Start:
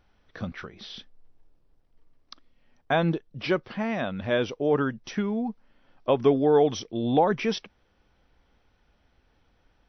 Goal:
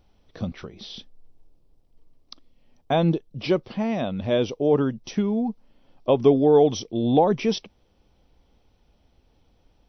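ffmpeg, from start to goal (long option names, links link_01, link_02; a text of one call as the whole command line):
ffmpeg -i in.wav -af "equalizer=frequency=1600:width_type=o:width=1.1:gain=-12.5,volume=4.5dB" out.wav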